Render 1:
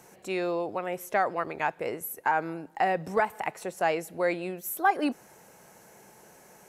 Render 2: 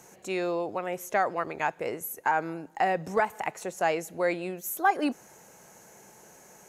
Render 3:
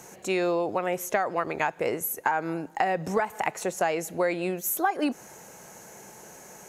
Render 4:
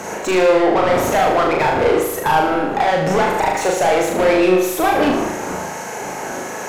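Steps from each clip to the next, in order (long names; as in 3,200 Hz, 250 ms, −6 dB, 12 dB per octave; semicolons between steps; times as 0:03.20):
parametric band 6,600 Hz +9 dB 0.23 octaves
downward compressor 12 to 1, threshold −27 dBFS, peak gain reduction 10 dB; level +6 dB
wind on the microphone 430 Hz −41 dBFS; mid-hump overdrive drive 30 dB, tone 1,700 Hz, clips at −9 dBFS; flutter between parallel walls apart 6.5 metres, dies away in 0.73 s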